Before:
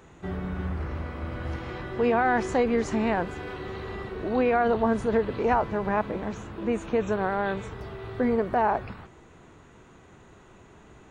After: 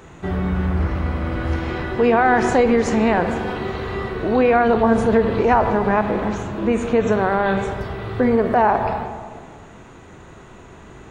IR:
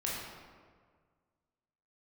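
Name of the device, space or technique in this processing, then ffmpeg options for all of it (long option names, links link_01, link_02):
ducked reverb: -filter_complex "[0:a]asplit=3[link_01][link_02][link_03];[1:a]atrim=start_sample=2205[link_04];[link_02][link_04]afir=irnorm=-1:irlink=0[link_05];[link_03]apad=whole_len=489756[link_06];[link_05][link_06]sidechaincompress=threshold=-25dB:ratio=8:attack=6.1:release=113,volume=-6.5dB[link_07];[link_01][link_07]amix=inputs=2:normalize=0,volume=6dB"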